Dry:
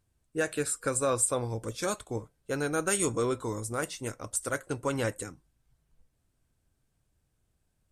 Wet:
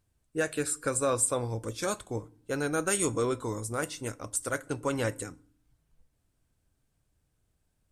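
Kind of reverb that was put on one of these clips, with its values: FDN reverb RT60 0.53 s, low-frequency decay 1.6×, high-frequency decay 0.8×, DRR 19.5 dB

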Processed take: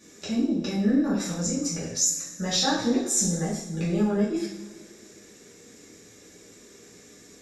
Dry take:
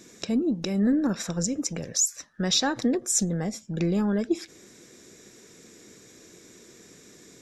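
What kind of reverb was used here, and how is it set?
two-slope reverb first 0.58 s, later 2.4 s, from -18 dB, DRR -9.5 dB; trim -9 dB

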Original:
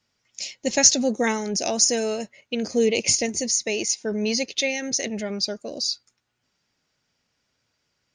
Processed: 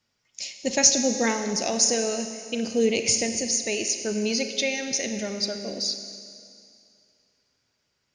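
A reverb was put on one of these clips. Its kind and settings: Schroeder reverb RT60 2.4 s, combs from 31 ms, DRR 7 dB; trim -2 dB

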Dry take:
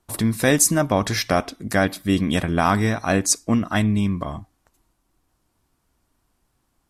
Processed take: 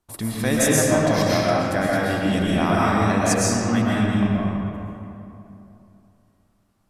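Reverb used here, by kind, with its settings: algorithmic reverb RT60 2.9 s, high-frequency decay 0.55×, pre-delay 85 ms, DRR -7 dB; trim -7 dB

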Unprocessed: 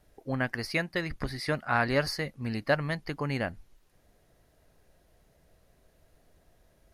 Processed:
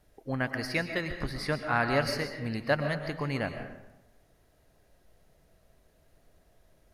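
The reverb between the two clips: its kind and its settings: algorithmic reverb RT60 0.96 s, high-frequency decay 0.6×, pre-delay 85 ms, DRR 7 dB; trim -1 dB

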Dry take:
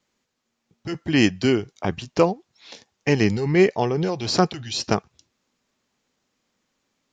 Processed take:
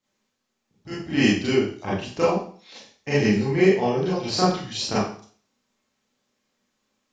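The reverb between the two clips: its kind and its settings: Schroeder reverb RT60 0.46 s, combs from 29 ms, DRR -9.5 dB; trim -10.5 dB

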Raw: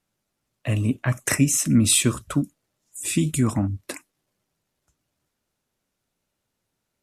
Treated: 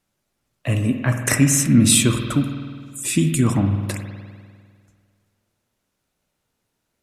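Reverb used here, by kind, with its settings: spring tank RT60 1.9 s, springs 50 ms, chirp 50 ms, DRR 5.5 dB; trim +3 dB

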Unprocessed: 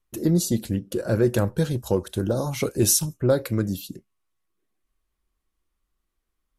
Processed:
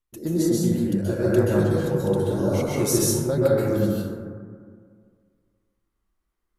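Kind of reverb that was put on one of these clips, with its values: plate-style reverb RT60 2 s, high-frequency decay 0.25×, pre-delay 115 ms, DRR -7.5 dB; trim -7 dB

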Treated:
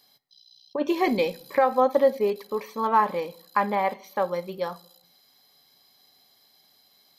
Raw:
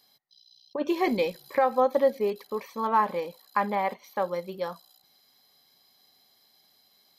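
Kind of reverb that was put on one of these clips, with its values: simulated room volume 860 m³, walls furnished, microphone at 0.32 m; trim +2.5 dB

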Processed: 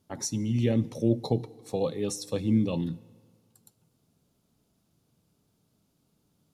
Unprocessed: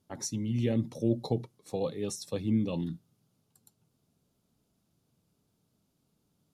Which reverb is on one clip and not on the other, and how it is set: FDN reverb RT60 1.8 s, low-frequency decay 0.95×, high-frequency decay 0.8×, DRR 19 dB; trim +3.5 dB

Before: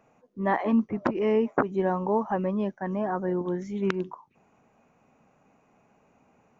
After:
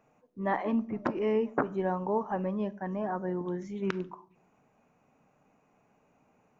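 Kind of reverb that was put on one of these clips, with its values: simulated room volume 750 m³, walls furnished, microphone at 0.43 m; trim -4.5 dB

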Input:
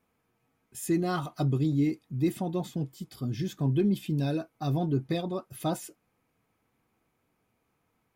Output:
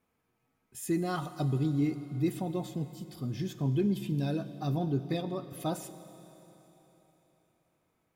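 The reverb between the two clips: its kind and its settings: Schroeder reverb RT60 3.8 s, combs from 31 ms, DRR 12 dB; trim -3 dB

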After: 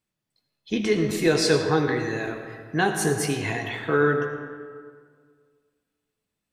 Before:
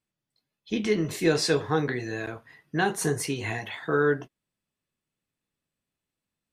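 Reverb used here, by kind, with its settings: algorithmic reverb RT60 1.9 s, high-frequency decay 0.6×, pre-delay 40 ms, DRR 6 dB; trim +2.5 dB

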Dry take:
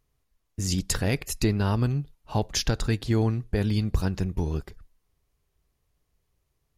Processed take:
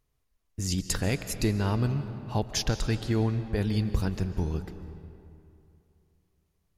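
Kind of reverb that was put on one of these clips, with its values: algorithmic reverb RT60 2.7 s, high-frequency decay 0.65×, pre-delay 105 ms, DRR 10.5 dB; trim -2.5 dB

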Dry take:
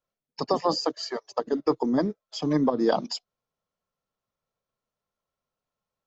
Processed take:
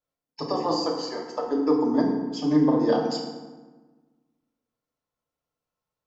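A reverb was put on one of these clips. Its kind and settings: FDN reverb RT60 1.3 s, low-frequency decay 1.3×, high-frequency decay 0.6×, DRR -1.5 dB; trim -4.5 dB

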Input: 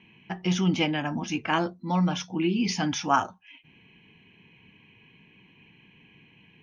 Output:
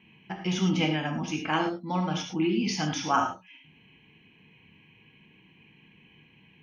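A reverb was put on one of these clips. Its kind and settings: gated-style reverb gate 130 ms flat, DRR 3 dB; trim -3 dB

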